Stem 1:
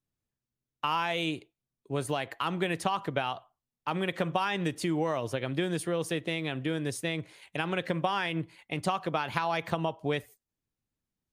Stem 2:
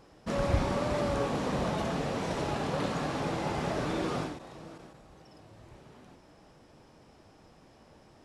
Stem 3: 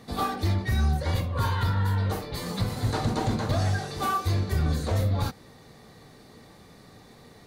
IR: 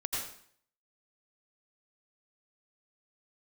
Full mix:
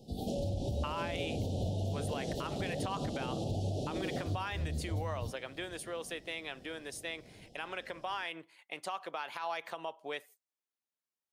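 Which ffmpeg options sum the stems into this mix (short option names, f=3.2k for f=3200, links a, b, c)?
-filter_complex "[0:a]highpass=530,volume=-5.5dB,asplit=2[a][b];[1:a]volume=-1dB[c];[2:a]lowshelf=f=320:g=9.5,volume=-12.5dB[d];[b]apad=whole_len=329226[e];[d][e]sidechaincompress=threshold=-45dB:ratio=8:attack=16:release=162[f];[c][f]amix=inputs=2:normalize=0,asuperstop=centerf=1500:order=12:qfactor=0.69,alimiter=level_in=1.5dB:limit=-24dB:level=0:latency=1:release=244,volume=-1.5dB,volume=0dB[g];[a][g]amix=inputs=2:normalize=0,alimiter=level_in=2.5dB:limit=-24dB:level=0:latency=1:release=67,volume=-2.5dB"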